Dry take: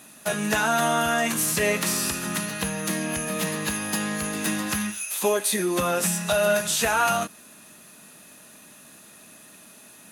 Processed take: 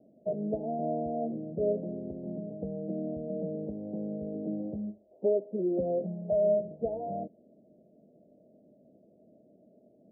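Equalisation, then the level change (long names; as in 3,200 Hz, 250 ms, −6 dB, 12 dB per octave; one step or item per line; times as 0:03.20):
Butterworth low-pass 650 Hz 72 dB per octave
low-shelf EQ 250 Hz −10.5 dB
0.0 dB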